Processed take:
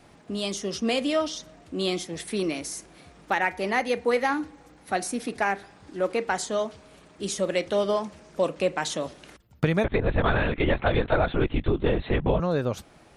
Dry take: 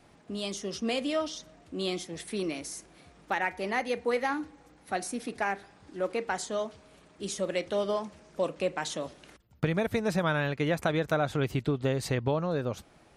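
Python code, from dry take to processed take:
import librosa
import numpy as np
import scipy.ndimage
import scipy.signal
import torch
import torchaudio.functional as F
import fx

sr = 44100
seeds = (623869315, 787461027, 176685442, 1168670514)

y = fx.lpc_vocoder(x, sr, seeds[0], excitation='whisper', order=10, at=(9.84, 12.4))
y = y * librosa.db_to_amplitude(5.0)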